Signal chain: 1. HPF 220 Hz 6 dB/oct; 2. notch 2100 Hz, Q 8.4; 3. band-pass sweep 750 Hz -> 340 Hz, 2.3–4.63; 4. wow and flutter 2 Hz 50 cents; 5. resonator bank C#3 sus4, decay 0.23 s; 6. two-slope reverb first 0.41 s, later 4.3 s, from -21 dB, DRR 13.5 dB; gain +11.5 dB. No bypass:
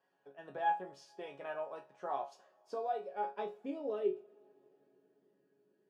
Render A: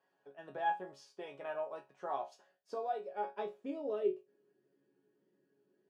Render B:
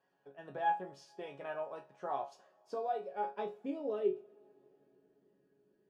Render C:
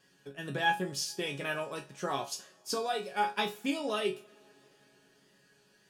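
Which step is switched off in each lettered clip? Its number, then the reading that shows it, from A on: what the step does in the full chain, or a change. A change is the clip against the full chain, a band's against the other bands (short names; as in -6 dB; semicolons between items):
6, 1 kHz band -1.5 dB; 1, 250 Hz band +1.5 dB; 3, 4 kHz band +16.0 dB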